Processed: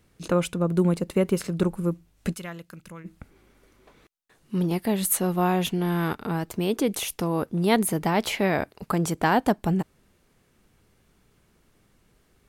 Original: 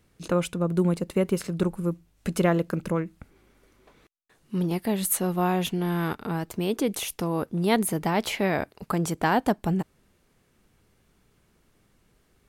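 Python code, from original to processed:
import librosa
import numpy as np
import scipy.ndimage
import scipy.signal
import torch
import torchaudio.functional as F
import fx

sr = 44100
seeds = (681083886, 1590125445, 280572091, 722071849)

y = fx.tone_stack(x, sr, knobs='5-5-5', at=(2.33, 3.04), fade=0.02)
y = F.gain(torch.from_numpy(y), 1.5).numpy()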